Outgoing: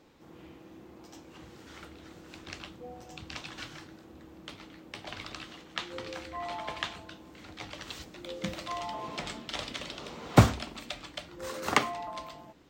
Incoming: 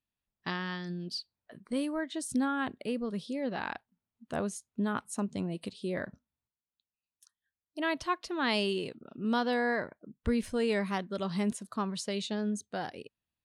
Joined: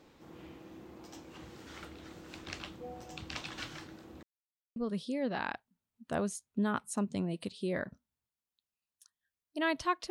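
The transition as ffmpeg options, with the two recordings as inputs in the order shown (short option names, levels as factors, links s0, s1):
-filter_complex "[0:a]apad=whole_dur=10.1,atrim=end=10.1,asplit=2[s0][s1];[s0]atrim=end=4.23,asetpts=PTS-STARTPTS,afade=t=out:st=4.226:d=0.004:c=hsin[s2];[s1]atrim=start=4.23:end=4.76,asetpts=PTS-STARTPTS,volume=0[s3];[1:a]atrim=start=2.97:end=8.31,asetpts=PTS-STARTPTS,afade=t=in:d=0.004:c=hsin[s4];[s2][s3][s4]concat=n=3:v=0:a=1"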